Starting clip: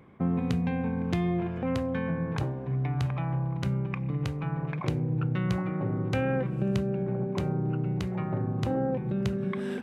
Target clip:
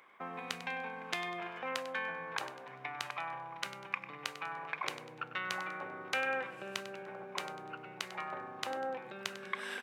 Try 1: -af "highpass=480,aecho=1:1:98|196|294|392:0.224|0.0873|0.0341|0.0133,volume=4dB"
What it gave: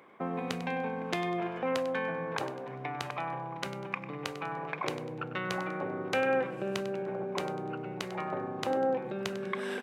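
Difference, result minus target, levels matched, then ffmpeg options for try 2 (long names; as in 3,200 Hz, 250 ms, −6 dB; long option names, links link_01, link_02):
500 Hz band +5.5 dB
-af "highpass=1100,aecho=1:1:98|196|294|392:0.224|0.0873|0.0341|0.0133,volume=4dB"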